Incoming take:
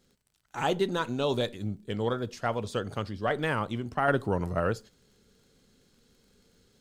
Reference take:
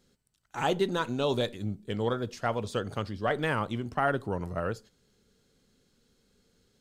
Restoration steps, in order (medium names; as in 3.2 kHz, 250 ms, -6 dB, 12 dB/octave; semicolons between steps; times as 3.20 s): de-click; trim 0 dB, from 4.08 s -4 dB